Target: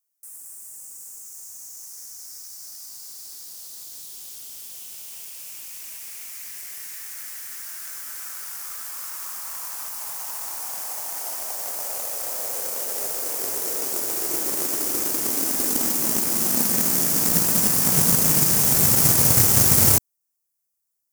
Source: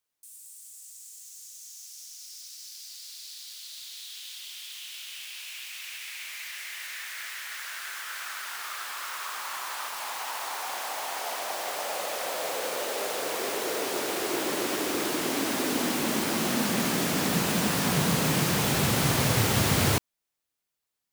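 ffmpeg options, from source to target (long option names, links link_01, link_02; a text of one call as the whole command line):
ffmpeg -i in.wav -filter_complex "[0:a]aeval=exprs='0.299*(cos(1*acos(clip(val(0)/0.299,-1,1)))-cos(1*PI/2))+0.0266*(cos(7*acos(clip(val(0)/0.299,-1,1)))-cos(7*PI/2))':channel_layout=same,lowshelf=frequency=160:gain=4.5,asplit=2[link_01][link_02];[link_02]acrusher=samples=12:mix=1:aa=0.000001,volume=-10dB[link_03];[link_01][link_03]amix=inputs=2:normalize=0,aexciter=amount=4.9:drive=6.5:freq=5300,volume=-1.5dB" out.wav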